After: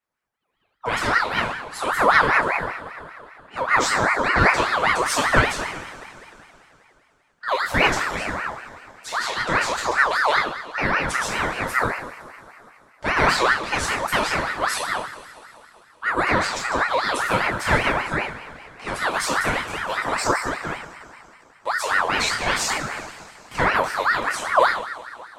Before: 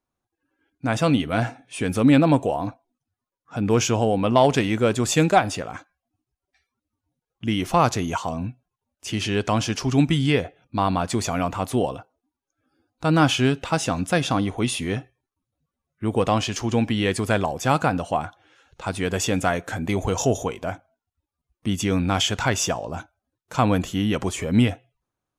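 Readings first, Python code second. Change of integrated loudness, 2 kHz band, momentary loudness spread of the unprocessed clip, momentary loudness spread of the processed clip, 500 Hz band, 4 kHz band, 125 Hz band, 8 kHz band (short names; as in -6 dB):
+1.5 dB, +10.0 dB, 13 LU, 16 LU, -2.0 dB, +1.0 dB, -9.0 dB, -0.5 dB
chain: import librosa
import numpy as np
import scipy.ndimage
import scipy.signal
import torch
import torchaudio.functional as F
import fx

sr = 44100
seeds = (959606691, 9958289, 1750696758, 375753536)

y = fx.rev_double_slope(x, sr, seeds[0], early_s=0.48, late_s=3.0, knee_db=-18, drr_db=-6.0)
y = fx.ring_lfo(y, sr, carrier_hz=1200.0, swing_pct=40, hz=5.1)
y = y * librosa.db_to_amplitude(-3.5)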